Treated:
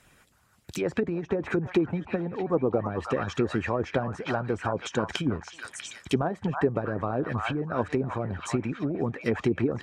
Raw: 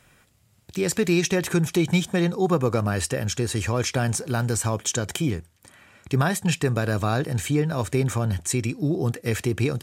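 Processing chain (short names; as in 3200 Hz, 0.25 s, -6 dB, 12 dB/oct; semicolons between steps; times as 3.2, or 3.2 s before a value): delay with a stepping band-pass 0.322 s, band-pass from 1100 Hz, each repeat 0.7 oct, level -2 dB; treble ducked by the level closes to 690 Hz, closed at -18 dBFS; harmonic-percussive split harmonic -13 dB; gain +2.5 dB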